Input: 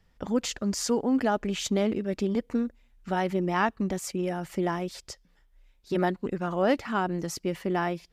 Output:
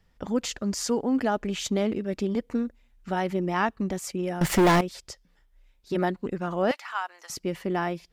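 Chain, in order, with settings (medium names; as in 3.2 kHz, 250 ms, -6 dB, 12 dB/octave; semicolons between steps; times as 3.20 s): 4.41–4.81 s: waveshaping leveller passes 5; 6.71–7.30 s: high-pass 860 Hz 24 dB/octave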